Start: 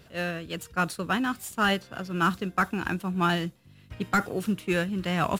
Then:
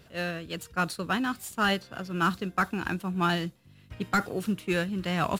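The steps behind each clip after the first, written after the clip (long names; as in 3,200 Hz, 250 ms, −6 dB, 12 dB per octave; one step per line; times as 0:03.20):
dynamic equaliser 4,300 Hz, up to +5 dB, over −52 dBFS, Q 4
level −1.5 dB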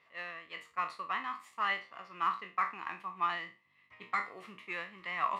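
peak hold with a decay on every bin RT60 0.31 s
pair of resonant band-passes 1,500 Hz, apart 0.81 octaves
level +2.5 dB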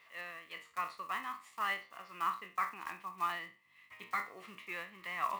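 one scale factor per block 5 bits
one half of a high-frequency compander encoder only
level −3 dB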